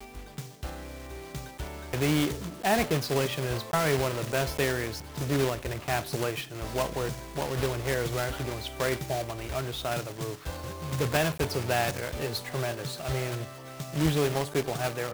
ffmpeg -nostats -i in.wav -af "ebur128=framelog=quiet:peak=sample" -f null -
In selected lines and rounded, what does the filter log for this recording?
Integrated loudness:
  I:         -30.1 LUFS
  Threshold: -40.4 LUFS
Loudness range:
  LRA:         3.4 LU
  Threshold: -50.1 LUFS
  LRA low:   -31.5 LUFS
  LRA high:  -28.1 LUFS
Sample peak:
  Peak:      -11.8 dBFS